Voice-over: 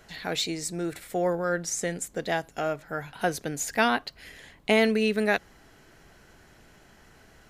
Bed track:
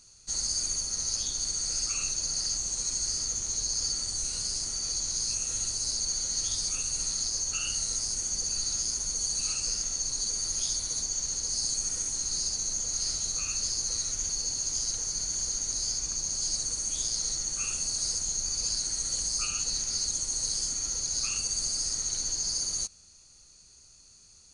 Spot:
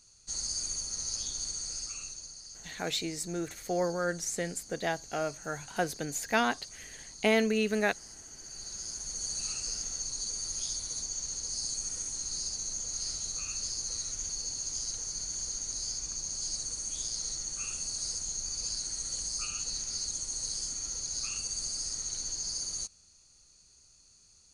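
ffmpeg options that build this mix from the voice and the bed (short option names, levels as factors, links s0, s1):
-filter_complex "[0:a]adelay=2550,volume=0.631[s0];[1:a]volume=2.51,afade=t=out:st=1.39:d=0.99:silence=0.223872,afade=t=in:st=8.39:d=0.94:silence=0.237137[s1];[s0][s1]amix=inputs=2:normalize=0"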